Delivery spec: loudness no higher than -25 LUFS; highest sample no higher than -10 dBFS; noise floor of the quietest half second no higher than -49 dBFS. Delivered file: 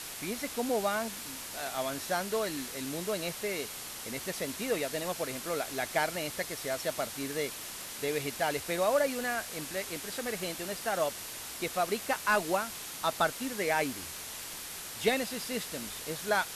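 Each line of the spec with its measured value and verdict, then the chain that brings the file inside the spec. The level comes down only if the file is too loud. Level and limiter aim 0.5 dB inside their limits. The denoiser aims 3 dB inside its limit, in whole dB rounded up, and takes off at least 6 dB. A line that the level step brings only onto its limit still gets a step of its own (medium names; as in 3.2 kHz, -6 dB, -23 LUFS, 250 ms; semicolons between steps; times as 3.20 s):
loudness -33.0 LUFS: pass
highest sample -15.5 dBFS: pass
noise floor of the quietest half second -42 dBFS: fail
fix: noise reduction 10 dB, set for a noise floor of -42 dBFS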